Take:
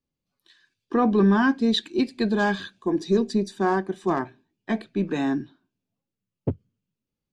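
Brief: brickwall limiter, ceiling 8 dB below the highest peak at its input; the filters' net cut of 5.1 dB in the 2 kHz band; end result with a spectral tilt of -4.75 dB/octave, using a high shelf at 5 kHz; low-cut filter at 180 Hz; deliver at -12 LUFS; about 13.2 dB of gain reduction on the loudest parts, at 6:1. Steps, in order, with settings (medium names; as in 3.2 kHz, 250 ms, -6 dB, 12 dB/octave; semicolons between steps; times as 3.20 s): high-pass 180 Hz; peaking EQ 2 kHz -6.5 dB; treble shelf 5 kHz -4.5 dB; compression 6:1, threshold -31 dBFS; trim +27 dB; peak limiter -2 dBFS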